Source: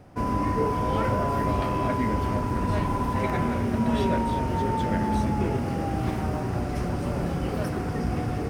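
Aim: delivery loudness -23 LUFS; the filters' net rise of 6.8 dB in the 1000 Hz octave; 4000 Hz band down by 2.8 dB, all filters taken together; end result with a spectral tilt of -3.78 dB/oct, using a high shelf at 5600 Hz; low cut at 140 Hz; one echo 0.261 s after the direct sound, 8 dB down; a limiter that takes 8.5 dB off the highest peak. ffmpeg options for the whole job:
-af "highpass=140,equalizer=f=1k:t=o:g=7.5,equalizer=f=4k:t=o:g=-6.5,highshelf=f=5.6k:g=5,alimiter=limit=-19dB:level=0:latency=1,aecho=1:1:261:0.398,volume=3.5dB"

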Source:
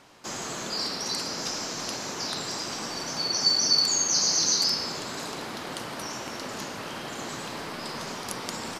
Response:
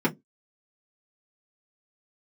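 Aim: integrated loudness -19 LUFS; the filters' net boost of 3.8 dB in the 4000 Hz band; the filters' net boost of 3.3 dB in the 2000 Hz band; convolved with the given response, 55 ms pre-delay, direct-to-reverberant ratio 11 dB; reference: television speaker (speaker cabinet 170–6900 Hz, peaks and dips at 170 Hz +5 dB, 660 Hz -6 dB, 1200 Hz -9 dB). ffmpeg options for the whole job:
-filter_complex "[0:a]equalizer=f=2k:t=o:g=4.5,equalizer=f=4k:t=o:g=4,asplit=2[a][b];[1:a]atrim=start_sample=2205,adelay=55[c];[b][c]afir=irnorm=-1:irlink=0,volume=-23.5dB[d];[a][d]amix=inputs=2:normalize=0,highpass=f=170:w=0.5412,highpass=f=170:w=1.3066,equalizer=f=170:t=q:w=4:g=5,equalizer=f=660:t=q:w=4:g=-6,equalizer=f=1.2k:t=q:w=4:g=-9,lowpass=f=6.9k:w=0.5412,lowpass=f=6.9k:w=1.3066,volume=5dB"

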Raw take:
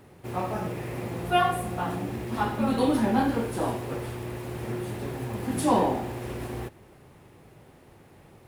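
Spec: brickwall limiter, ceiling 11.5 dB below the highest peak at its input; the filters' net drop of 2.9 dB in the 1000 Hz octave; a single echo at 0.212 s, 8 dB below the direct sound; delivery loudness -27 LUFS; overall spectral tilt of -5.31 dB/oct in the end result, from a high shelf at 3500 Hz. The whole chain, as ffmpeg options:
-af "equalizer=f=1k:t=o:g=-3.5,highshelf=f=3.5k:g=-8.5,alimiter=limit=-24dB:level=0:latency=1,aecho=1:1:212:0.398,volume=6.5dB"

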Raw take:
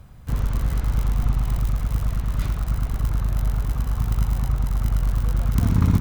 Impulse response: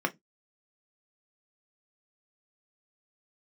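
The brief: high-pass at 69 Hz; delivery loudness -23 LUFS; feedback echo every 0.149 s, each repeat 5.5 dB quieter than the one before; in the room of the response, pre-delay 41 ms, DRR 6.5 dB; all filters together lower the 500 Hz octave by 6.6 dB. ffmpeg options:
-filter_complex "[0:a]highpass=69,equalizer=f=500:t=o:g=-9,aecho=1:1:149|298|447|596|745|894|1043:0.531|0.281|0.149|0.079|0.0419|0.0222|0.0118,asplit=2[a][b];[1:a]atrim=start_sample=2205,adelay=41[c];[b][c]afir=irnorm=-1:irlink=0,volume=-15.5dB[d];[a][d]amix=inputs=2:normalize=0,volume=3dB"

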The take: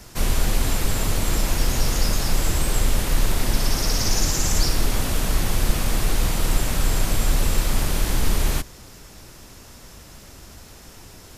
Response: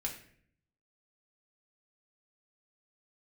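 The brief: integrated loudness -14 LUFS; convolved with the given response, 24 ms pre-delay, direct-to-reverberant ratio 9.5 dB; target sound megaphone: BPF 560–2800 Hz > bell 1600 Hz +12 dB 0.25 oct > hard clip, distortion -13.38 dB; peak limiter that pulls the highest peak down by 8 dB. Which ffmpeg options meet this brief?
-filter_complex "[0:a]alimiter=limit=-13.5dB:level=0:latency=1,asplit=2[a][b];[1:a]atrim=start_sample=2205,adelay=24[c];[b][c]afir=irnorm=-1:irlink=0,volume=-10.5dB[d];[a][d]amix=inputs=2:normalize=0,highpass=560,lowpass=2.8k,equalizer=f=1.6k:t=o:w=0.25:g=12,asoftclip=type=hard:threshold=-29.5dB,volume=19dB"

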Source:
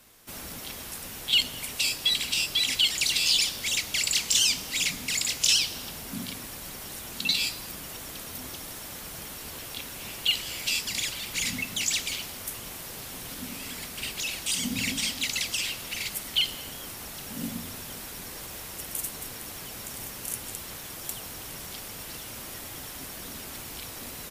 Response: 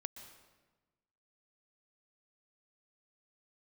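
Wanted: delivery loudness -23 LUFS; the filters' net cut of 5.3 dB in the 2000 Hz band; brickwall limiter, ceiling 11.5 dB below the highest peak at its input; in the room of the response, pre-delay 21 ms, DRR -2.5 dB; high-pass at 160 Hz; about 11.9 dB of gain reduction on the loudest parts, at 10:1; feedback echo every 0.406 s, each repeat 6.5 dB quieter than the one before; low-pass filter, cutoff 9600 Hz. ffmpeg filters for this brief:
-filter_complex "[0:a]highpass=160,lowpass=9.6k,equalizer=f=2k:t=o:g=-7.5,acompressor=threshold=-33dB:ratio=10,alimiter=level_in=3.5dB:limit=-24dB:level=0:latency=1,volume=-3.5dB,aecho=1:1:406|812|1218|1624|2030|2436:0.473|0.222|0.105|0.0491|0.0231|0.0109,asplit=2[a][b];[1:a]atrim=start_sample=2205,adelay=21[c];[b][c]afir=irnorm=-1:irlink=0,volume=5.5dB[d];[a][d]amix=inputs=2:normalize=0,volume=10dB"

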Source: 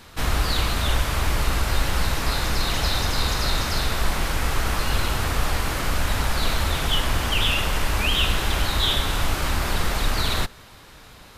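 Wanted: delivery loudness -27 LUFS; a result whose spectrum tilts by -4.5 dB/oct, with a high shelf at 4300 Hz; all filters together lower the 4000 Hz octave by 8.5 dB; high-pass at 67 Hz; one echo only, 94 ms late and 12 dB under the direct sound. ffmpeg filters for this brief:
-af "highpass=67,equalizer=f=4k:t=o:g=-7.5,highshelf=f=4.3k:g=-7,aecho=1:1:94:0.251,volume=0.5dB"

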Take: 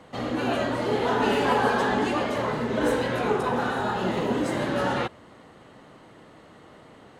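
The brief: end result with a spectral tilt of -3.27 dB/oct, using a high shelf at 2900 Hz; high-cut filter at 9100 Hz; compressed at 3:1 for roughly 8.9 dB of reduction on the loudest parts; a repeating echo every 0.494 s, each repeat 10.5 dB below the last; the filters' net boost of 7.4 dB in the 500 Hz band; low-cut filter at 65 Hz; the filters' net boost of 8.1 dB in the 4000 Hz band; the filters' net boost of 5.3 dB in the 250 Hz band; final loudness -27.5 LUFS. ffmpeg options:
-af "highpass=65,lowpass=9.1k,equalizer=f=250:t=o:g=4,equalizer=f=500:t=o:g=7.5,highshelf=f=2.9k:g=7.5,equalizer=f=4k:t=o:g=5,acompressor=threshold=-25dB:ratio=3,aecho=1:1:494|988|1482:0.299|0.0896|0.0269,volume=-1dB"

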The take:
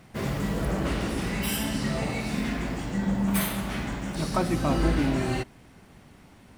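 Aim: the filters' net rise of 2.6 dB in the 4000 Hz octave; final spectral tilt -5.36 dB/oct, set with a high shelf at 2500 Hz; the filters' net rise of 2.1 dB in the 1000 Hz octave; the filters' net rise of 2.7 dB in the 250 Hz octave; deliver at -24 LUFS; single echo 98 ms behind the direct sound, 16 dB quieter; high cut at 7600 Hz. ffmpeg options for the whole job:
-af "lowpass=7.6k,equalizer=f=250:t=o:g=3.5,equalizer=f=1k:t=o:g=3,highshelf=f=2.5k:g=-5,equalizer=f=4k:t=o:g=8,aecho=1:1:98:0.158,volume=2dB"

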